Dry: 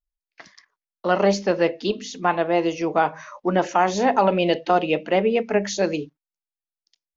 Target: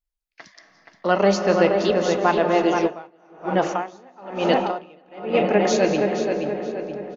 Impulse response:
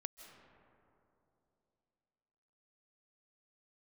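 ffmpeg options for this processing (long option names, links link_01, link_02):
-filter_complex "[0:a]asplit=2[link_01][link_02];[link_02]adelay=475,lowpass=frequency=3200:poles=1,volume=-5dB,asplit=2[link_03][link_04];[link_04]adelay=475,lowpass=frequency=3200:poles=1,volume=0.47,asplit=2[link_05][link_06];[link_06]adelay=475,lowpass=frequency=3200:poles=1,volume=0.47,asplit=2[link_07][link_08];[link_08]adelay=475,lowpass=frequency=3200:poles=1,volume=0.47,asplit=2[link_09][link_10];[link_10]adelay=475,lowpass=frequency=3200:poles=1,volume=0.47,asplit=2[link_11][link_12];[link_12]adelay=475,lowpass=frequency=3200:poles=1,volume=0.47[link_13];[link_01][link_03][link_05][link_07][link_09][link_11][link_13]amix=inputs=7:normalize=0[link_14];[1:a]atrim=start_sample=2205,asetrate=41895,aresample=44100[link_15];[link_14][link_15]afir=irnorm=-1:irlink=0,asplit=3[link_16][link_17][link_18];[link_16]afade=type=out:start_time=2.86:duration=0.02[link_19];[link_17]aeval=exprs='val(0)*pow(10,-32*(0.5-0.5*cos(2*PI*1.1*n/s))/20)':channel_layout=same,afade=type=in:start_time=2.86:duration=0.02,afade=type=out:start_time=5.33:duration=0.02[link_20];[link_18]afade=type=in:start_time=5.33:duration=0.02[link_21];[link_19][link_20][link_21]amix=inputs=3:normalize=0,volume=5dB"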